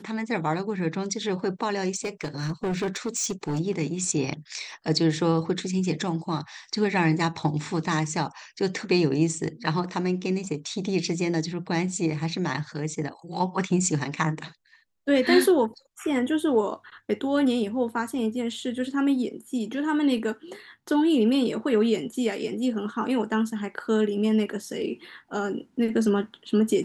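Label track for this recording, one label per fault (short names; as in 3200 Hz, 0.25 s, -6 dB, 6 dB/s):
1.950000	3.600000	clipped -23.5 dBFS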